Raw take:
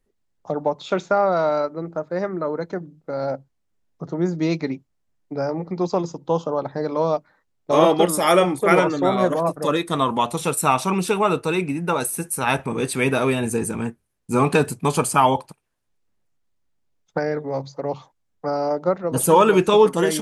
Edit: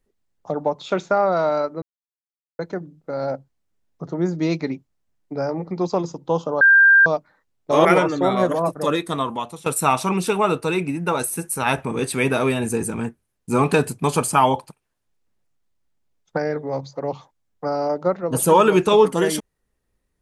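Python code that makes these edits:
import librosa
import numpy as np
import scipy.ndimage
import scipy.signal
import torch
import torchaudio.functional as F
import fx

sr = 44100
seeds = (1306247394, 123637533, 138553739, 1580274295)

y = fx.edit(x, sr, fx.silence(start_s=1.82, length_s=0.77),
    fx.bleep(start_s=6.61, length_s=0.45, hz=1590.0, db=-8.5),
    fx.cut(start_s=7.85, length_s=0.81),
    fx.fade_out_to(start_s=9.75, length_s=0.72, floor_db=-16.0), tone=tone)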